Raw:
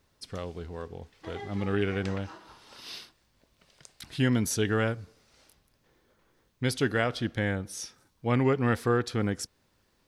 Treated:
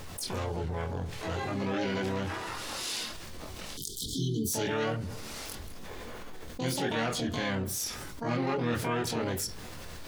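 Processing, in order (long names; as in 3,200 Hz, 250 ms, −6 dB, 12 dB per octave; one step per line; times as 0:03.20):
multi-voice chorus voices 6, 0.69 Hz, delay 24 ms, depth 2.7 ms
pitch-shifted copies added +5 semitones −6 dB, +12 semitones −5 dB
on a send at −14 dB: convolution reverb RT60 0.25 s, pre-delay 4 ms
on the sum: time-frequency box erased 0:03.77–0:04.53, 460–3,000 Hz
envelope flattener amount 70%
level −7 dB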